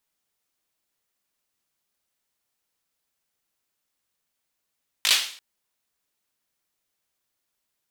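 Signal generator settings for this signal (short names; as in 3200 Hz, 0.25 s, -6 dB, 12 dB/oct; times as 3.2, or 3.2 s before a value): hand clap length 0.34 s, apart 19 ms, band 3300 Hz, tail 0.49 s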